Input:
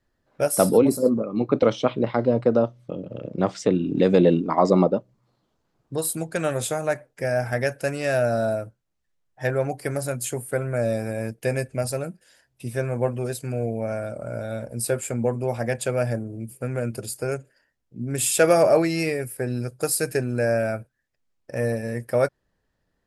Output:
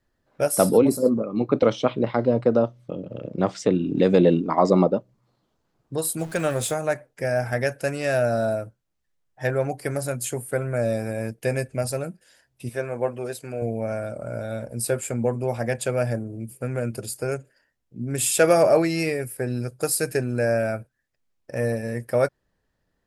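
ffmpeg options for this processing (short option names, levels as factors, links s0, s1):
-filter_complex "[0:a]asettb=1/sr,asplit=3[s0][s1][s2];[s0]atrim=end=6.194[s3];[s1]atrim=start=6.19:end=6.74,asetpts=PTS-STARTPTS,afade=t=in:d=0.004:c=qsin,afade=t=out:st=0.546:d=0.004:c=qsin,aeval=exprs='val(0)+0.5*0.0141*sgn(val(0))':c=same[s4];[s2]atrim=start=6.736[s5];[s3][s4]acrossfade=d=0.004:c1=hsin:c2=qsin[s6];[s6][s5]acrossfade=d=0.004:c1=qsin:c2=hsin,asettb=1/sr,asplit=3[s7][s8][s9];[s7]atrim=end=12.694[s10];[s8]atrim=start=12.69:end=13.62,asetpts=PTS-STARTPTS,afade=t=in:d=0.004:c=qsin,afade=t=out:st=0.926:d=0.004:c=qsin,bass=f=250:g=-10,treble=f=4000:g=-4[s11];[s9]atrim=start=13.616[s12];[s10][s11]acrossfade=d=0.004:c1=hsin:c2=qsin[s13];[s13][s12]acrossfade=d=0.004:c1=qsin:c2=hsin"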